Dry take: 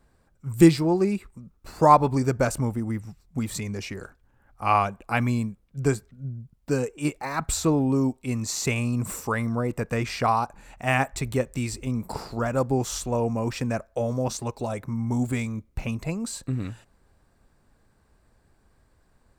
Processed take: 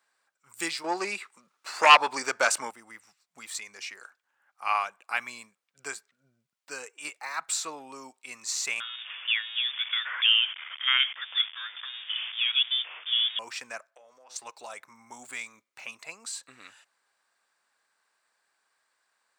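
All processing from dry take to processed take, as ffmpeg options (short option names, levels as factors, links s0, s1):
-filter_complex "[0:a]asettb=1/sr,asplit=3[s0][s1][s2];[s0]atrim=end=0.844[s3];[s1]atrim=start=0.84:end=2.71,asetpts=PTS-STARTPTS,afade=t=in:d=0.004:c=qsin,afade=t=out:st=1.866:d=0.004:c=qsin,highpass=180,highshelf=f=11000:g=-9,aeval=exprs='0.668*sin(PI/2*2.24*val(0)/0.668)':c=same[s4];[s2]atrim=start=2.706[s5];[s3][s4]acrossfade=d=0.004:c1=hsin:c2=qsin[s6];[s6][s5]acrossfade=d=0.004:c1=qsin:c2=hsin,asettb=1/sr,asplit=3[s7][s8][s9];[s7]atrim=end=8.804[s10];[s8]atrim=start=8.8:end=13.39,asetpts=PTS-STARTPTS,afade=t=in:d=0.004:c=qsin,afade=t=out:st=4.586:d=0.004:c=qsin,aeval=exprs='val(0)+0.5*0.0335*sgn(val(0))':c=same,highpass=f=410:w=0.5412,highpass=f=410:w=1.3066,lowpass=f=3300:t=q:w=0.5098,lowpass=f=3300:t=q:w=0.6013,lowpass=f=3300:t=q:w=0.9,lowpass=f=3300:t=q:w=2.563,afreqshift=-3900[s11];[s9]atrim=start=13.386[s12];[s10][s11]acrossfade=d=0.004:c1=hsin:c2=qsin[s13];[s13][s12]acrossfade=d=0.004:c1=qsin:c2=hsin,asettb=1/sr,asplit=3[s14][s15][s16];[s14]atrim=end=13.904[s17];[s15]atrim=start=13.9:end=14.36,asetpts=PTS-STARTPTS,afade=t=in:d=0.004:c=qsin,afade=t=out:st=0.456:d=0.004:c=qsin,bass=f=250:g=-8,treble=f=4000:g=-7,bandreject=f=125.9:t=h:w=4,bandreject=f=251.8:t=h:w=4,bandreject=f=377.7:t=h:w=4,bandreject=f=503.6:t=h:w=4,bandreject=f=629.5:t=h:w=4,bandreject=f=755.4:t=h:w=4,bandreject=f=881.3:t=h:w=4,bandreject=f=1007.2:t=h:w=4,bandreject=f=1133.1:t=h:w=4,bandreject=f=1259:t=h:w=4,bandreject=f=1384.9:t=h:w=4,bandreject=f=1510.8:t=h:w=4,bandreject=f=1636.7:t=h:w=4,bandreject=f=1762.6:t=h:w=4,bandreject=f=1888.5:t=h:w=4,bandreject=f=2014.4:t=h:w=4,bandreject=f=2140.3:t=h:w=4,bandreject=f=2266.2:t=h:w=4,bandreject=f=2392.1:t=h:w=4,bandreject=f=2518:t=h:w=4,bandreject=f=2643.9:t=h:w=4,bandreject=f=2769.8:t=h:w=4,bandreject=f=2895.7:t=h:w=4,bandreject=f=3021.6:t=h:w=4,bandreject=f=3147.5:t=h:w=4,bandreject=f=3273.4:t=h:w=4,bandreject=f=3399.3:t=h:w=4,bandreject=f=3525.2:t=h:w=4,bandreject=f=3651.1:t=h:w=4,bandreject=f=3777:t=h:w=4,bandreject=f=3902.9:t=h:w=4,bandreject=f=4028.8:t=h:w=4,bandreject=f=4154.7:t=h:w=4,bandreject=f=4280.6:t=h:w=4,bandreject=f=4406.5:t=h:w=4,bandreject=f=4532.4:t=h:w=4,bandreject=f=4658.3:t=h:w=4,bandreject=f=4784.2:t=h:w=4,bandreject=f=4910.1:t=h:w=4,acompressor=threshold=0.0141:ratio=16:attack=3.2:release=140:knee=1:detection=peak[s18];[s16]atrim=start=14.356[s19];[s17][s18]acrossfade=d=0.004:c1=hsin:c2=qsin[s20];[s20][s19]acrossfade=d=0.004:c1=qsin:c2=hsin,highpass=1300,equalizer=f=13000:w=1.9:g=-12.5"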